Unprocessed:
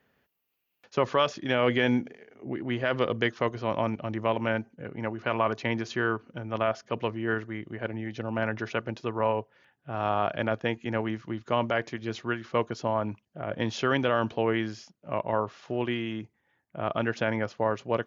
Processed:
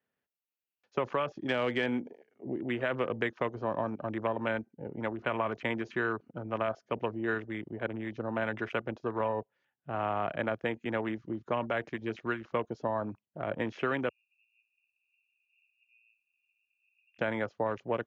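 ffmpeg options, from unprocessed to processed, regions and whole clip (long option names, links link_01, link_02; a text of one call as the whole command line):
ffmpeg -i in.wav -filter_complex "[0:a]asettb=1/sr,asplit=3[link_01][link_02][link_03];[link_01]atrim=end=14.094[link_04];[link_02]atrim=start=14.09:end=17.19,asetpts=PTS-STARTPTS,afade=type=in:duration=0.004:curve=qsin,afade=type=out:start_time=3.096:duration=0.004:curve=qsin,aeval=exprs='val(0)+0.5*0.0316*sgn(val(0))':channel_layout=same,asuperpass=centerf=2600:order=20:qfactor=6.5,aderivative[link_05];[link_03]atrim=start=17.186[link_06];[link_04][link_05]acrossfade=duration=0.004:curve1=hsin:curve2=qsin[link_07];[link_07][link_06]acrossfade=duration=0.004:curve1=qsin:curve2=hsin,lowshelf=frequency=80:gain=-9.5,acrossover=split=250|3100[link_08][link_09][link_10];[link_08]acompressor=threshold=-40dB:ratio=4[link_11];[link_09]acompressor=threshold=-28dB:ratio=4[link_12];[link_10]acompressor=threshold=-45dB:ratio=4[link_13];[link_11][link_12][link_13]amix=inputs=3:normalize=0,afwtdn=0.00891" out.wav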